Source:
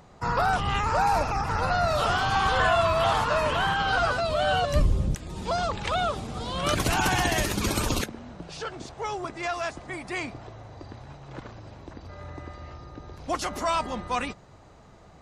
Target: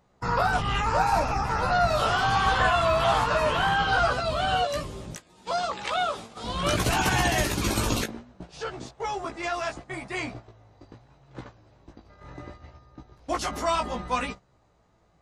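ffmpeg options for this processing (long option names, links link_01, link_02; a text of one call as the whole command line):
ffmpeg -i in.wav -filter_complex "[0:a]asettb=1/sr,asplit=3[link_01][link_02][link_03];[link_01]atrim=end=4.624[link_04];[link_02]atrim=start=4.62:end=6.44,asetpts=PTS-STARTPTS,afade=type=in:duration=0.004:curve=qsin,afade=type=out:start_time=1.816:duration=0.004:curve=qsin,highpass=frequency=520:poles=1[link_05];[link_03]atrim=start=6.436[link_06];[link_04][link_05]acrossfade=duration=0.004:curve1=hsin:curve2=qsin[link_07];[link_07][link_06]acrossfade=duration=0.004:curve1=qsin:curve2=hsin,agate=range=-13dB:threshold=-39dB:ratio=16:detection=peak,flanger=delay=15.5:depth=2.6:speed=0.7,volume=3.5dB" out.wav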